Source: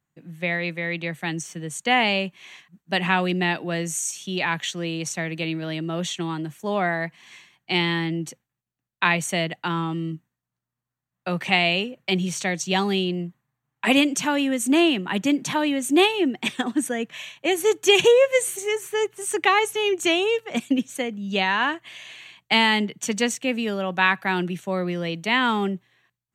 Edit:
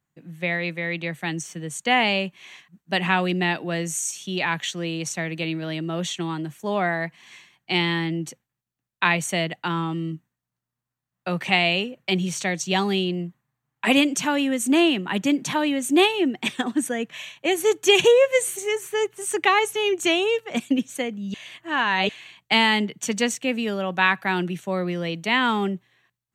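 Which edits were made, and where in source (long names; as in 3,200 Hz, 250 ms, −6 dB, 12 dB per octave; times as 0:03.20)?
0:21.34–0:22.09: reverse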